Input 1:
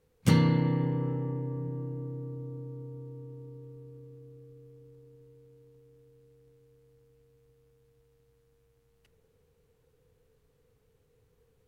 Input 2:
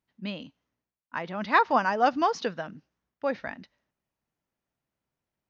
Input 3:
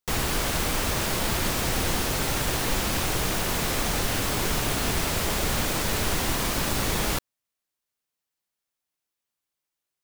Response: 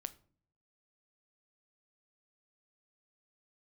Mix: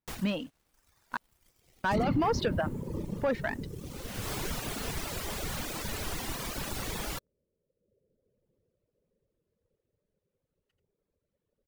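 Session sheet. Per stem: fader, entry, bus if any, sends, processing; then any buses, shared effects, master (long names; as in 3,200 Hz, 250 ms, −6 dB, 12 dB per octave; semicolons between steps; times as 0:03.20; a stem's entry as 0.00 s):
−8.5 dB, 1.65 s, no send, echo send −6 dB, high-shelf EQ 5,200 Hz −6.5 dB; random phases in short frames
−2.5 dB, 0.00 s, muted 0:01.17–0:01.84, no send, no echo send, high-shelf EQ 4,000 Hz −9.5 dB; compressor whose output falls as the input rises −26 dBFS, ratio −1
−15.0 dB, 0.00 s, no send, no echo send, automatic ducking −20 dB, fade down 0.45 s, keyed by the second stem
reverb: not used
echo: single-tap delay 85 ms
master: leveller curve on the samples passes 2; reverb reduction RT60 1.1 s; brickwall limiter −21 dBFS, peak gain reduction 5.5 dB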